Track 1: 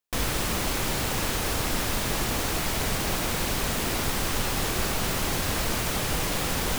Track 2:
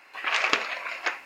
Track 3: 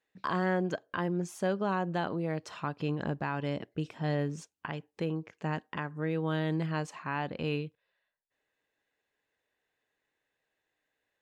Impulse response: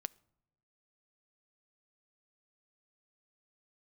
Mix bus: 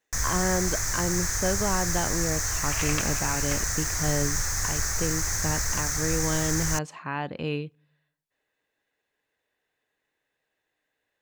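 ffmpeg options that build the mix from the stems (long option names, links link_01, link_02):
-filter_complex "[0:a]firequalizer=gain_entry='entry(100,0);entry(190,-18);entry(1800,2);entry(2900,-21);entry(6200,11);entry(9300,-5)':delay=0.05:min_phase=1,volume=0.5dB[link_01];[1:a]adelay=2450,volume=-9.5dB[link_02];[2:a]volume=0dB,asplit=2[link_03][link_04];[link_04]volume=-6.5dB[link_05];[3:a]atrim=start_sample=2205[link_06];[link_05][link_06]afir=irnorm=-1:irlink=0[link_07];[link_01][link_02][link_03][link_07]amix=inputs=4:normalize=0"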